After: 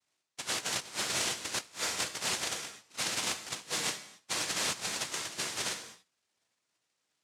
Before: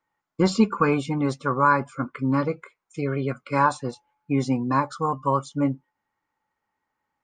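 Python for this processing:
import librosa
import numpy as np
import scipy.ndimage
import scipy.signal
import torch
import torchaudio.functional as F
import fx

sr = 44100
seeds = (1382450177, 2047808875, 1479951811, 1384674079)

y = fx.frame_reverse(x, sr, frame_ms=32.0)
y = scipy.signal.sosfilt(scipy.signal.butter(2, 350.0, 'highpass', fs=sr, output='sos'), y)
y = fx.noise_vocoder(y, sr, seeds[0], bands=1)
y = fx.rev_gated(y, sr, seeds[1], gate_ms=310, shape='falling', drr_db=8.5)
y = fx.over_compress(y, sr, threshold_db=-32.0, ratio=-0.5)
y = y * 10.0 ** (-2.5 / 20.0)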